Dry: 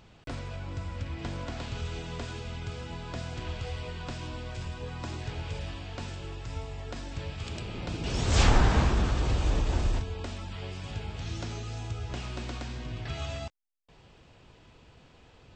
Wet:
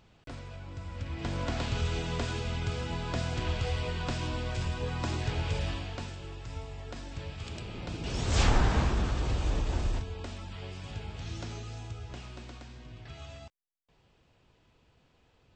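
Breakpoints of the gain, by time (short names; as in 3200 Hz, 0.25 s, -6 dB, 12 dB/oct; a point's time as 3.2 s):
0.76 s -5.5 dB
1.49 s +4.5 dB
5.73 s +4.5 dB
6.14 s -3 dB
11.56 s -3 dB
12.69 s -10 dB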